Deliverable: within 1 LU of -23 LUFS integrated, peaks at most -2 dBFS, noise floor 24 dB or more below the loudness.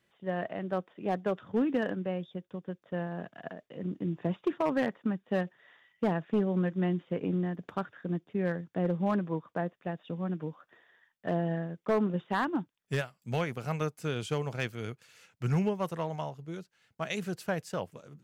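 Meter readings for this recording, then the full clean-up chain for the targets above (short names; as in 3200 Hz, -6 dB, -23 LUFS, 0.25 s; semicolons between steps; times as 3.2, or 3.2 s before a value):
clipped 0.4%; flat tops at -21.0 dBFS; loudness -33.5 LUFS; peak -21.0 dBFS; loudness target -23.0 LUFS
-> clip repair -21 dBFS; gain +10.5 dB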